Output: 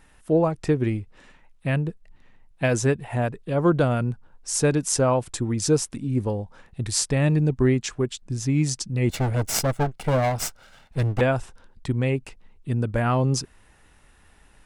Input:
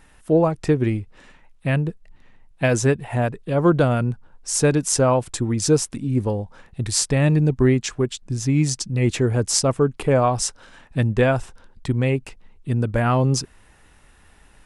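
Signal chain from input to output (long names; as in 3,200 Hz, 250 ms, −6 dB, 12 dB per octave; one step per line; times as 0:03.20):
0:09.09–0:11.21: lower of the sound and its delayed copy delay 1.4 ms
level −3 dB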